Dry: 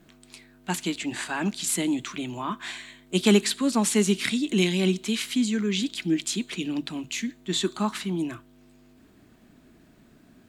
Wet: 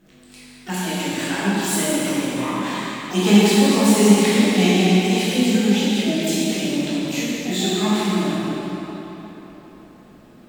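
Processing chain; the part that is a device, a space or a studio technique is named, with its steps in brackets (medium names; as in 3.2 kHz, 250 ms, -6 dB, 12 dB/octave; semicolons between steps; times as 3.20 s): shimmer-style reverb (harmony voices +12 st -10 dB; reverberation RT60 4.1 s, pre-delay 13 ms, DRR -9.5 dB); trim -3 dB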